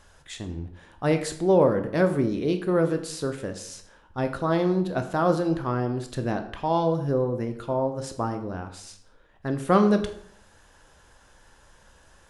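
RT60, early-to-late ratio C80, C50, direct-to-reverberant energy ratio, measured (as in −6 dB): 0.65 s, 14.0 dB, 11.0 dB, 6.5 dB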